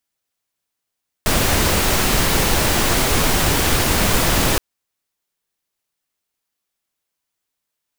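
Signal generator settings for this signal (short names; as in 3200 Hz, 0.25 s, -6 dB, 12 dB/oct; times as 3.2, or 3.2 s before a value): noise pink, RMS -16.5 dBFS 3.32 s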